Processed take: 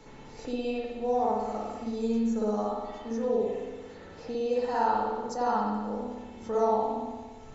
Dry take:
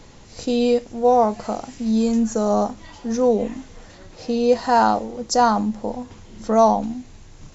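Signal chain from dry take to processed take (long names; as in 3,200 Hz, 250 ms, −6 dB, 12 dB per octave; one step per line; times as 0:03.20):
tuned comb filter 440 Hz, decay 0.16 s, harmonics all, mix 80%
spring reverb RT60 1.1 s, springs 57 ms, chirp 40 ms, DRR −7.5 dB
multiband upward and downward compressor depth 40%
level −7 dB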